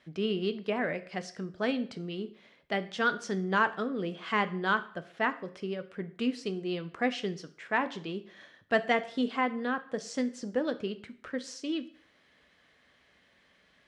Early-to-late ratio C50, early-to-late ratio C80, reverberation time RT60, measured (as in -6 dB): 16.0 dB, 19.5 dB, 0.55 s